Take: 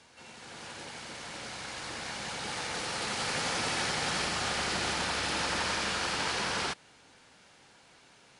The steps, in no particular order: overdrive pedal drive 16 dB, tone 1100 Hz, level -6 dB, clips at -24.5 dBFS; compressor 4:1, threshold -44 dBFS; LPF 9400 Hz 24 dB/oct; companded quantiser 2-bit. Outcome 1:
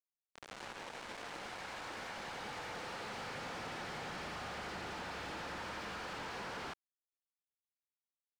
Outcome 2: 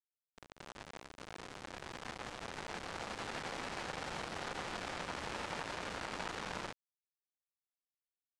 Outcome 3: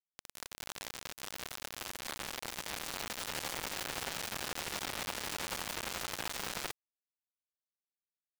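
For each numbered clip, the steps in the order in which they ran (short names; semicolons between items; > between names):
companded quantiser > LPF > overdrive pedal > compressor; compressor > companded quantiser > overdrive pedal > LPF; LPF > overdrive pedal > compressor > companded quantiser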